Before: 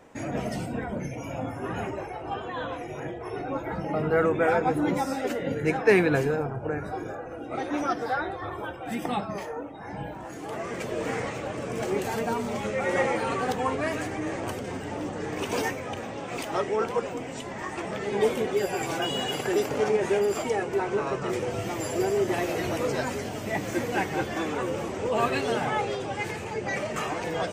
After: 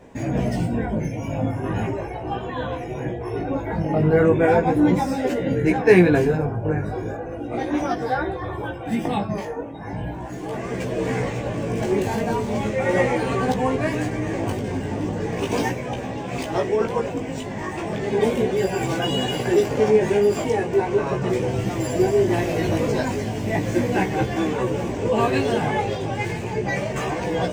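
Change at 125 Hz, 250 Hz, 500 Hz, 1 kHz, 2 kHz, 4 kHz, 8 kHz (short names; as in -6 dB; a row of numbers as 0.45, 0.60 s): +10.5, +8.0, +6.0, +3.5, +3.0, +3.0, +1.5 dB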